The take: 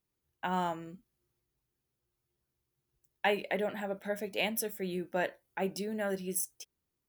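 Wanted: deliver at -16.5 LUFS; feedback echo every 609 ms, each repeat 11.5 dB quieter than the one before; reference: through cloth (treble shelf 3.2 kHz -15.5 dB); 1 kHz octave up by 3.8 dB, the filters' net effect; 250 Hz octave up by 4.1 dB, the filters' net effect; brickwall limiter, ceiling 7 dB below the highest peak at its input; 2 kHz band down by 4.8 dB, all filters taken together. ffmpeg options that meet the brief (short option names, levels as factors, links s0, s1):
-af "equalizer=f=250:t=o:g=6,equalizer=f=1000:t=o:g=6.5,equalizer=f=2000:t=o:g=-3,alimiter=limit=0.0891:level=0:latency=1,highshelf=f=3200:g=-15.5,aecho=1:1:609|1218|1827:0.266|0.0718|0.0194,volume=8.41"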